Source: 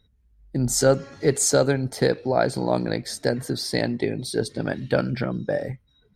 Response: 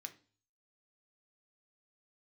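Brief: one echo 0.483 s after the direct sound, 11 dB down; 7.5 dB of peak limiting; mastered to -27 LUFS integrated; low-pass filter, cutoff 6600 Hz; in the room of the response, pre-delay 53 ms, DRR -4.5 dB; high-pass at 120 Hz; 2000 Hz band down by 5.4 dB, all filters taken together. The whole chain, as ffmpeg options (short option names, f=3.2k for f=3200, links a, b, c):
-filter_complex "[0:a]highpass=120,lowpass=6.6k,equalizer=f=2k:t=o:g=-7.5,alimiter=limit=-14.5dB:level=0:latency=1,aecho=1:1:483:0.282,asplit=2[a][b];[1:a]atrim=start_sample=2205,adelay=53[c];[b][c]afir=irnorm=-1:irlink=0,volume=9dB[d];[a][d]amix=inputs=2:normalize=0,volume=-3.5dB"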